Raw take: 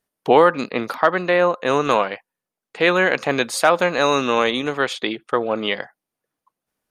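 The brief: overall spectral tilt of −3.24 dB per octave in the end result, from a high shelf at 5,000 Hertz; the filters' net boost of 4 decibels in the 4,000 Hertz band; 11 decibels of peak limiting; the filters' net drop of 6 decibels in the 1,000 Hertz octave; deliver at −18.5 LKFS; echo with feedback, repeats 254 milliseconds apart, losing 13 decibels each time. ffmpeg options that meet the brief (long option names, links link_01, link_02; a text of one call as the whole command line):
ffmpeg -i in.wav -af "equalizer=frequency=1000:width_type=o:gain=-8.5,equalizer=frequency=4000:width_type=o:gain=3.5,highshelf=frequency=5000:gain=5,alimiter=limit=-14.5dB:level=0:latency=1,aecho=1:1:254|508|762:0.224|0.0493|0.0108,volume=7.5dB" out.wav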